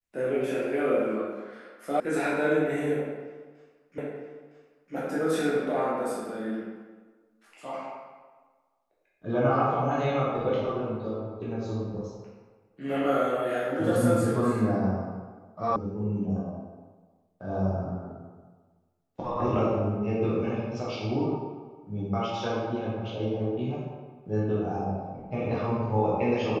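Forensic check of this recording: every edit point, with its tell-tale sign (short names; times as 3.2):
2 sound cut off
3.98 repeat of the last 0.96 s
15.76 sound cut off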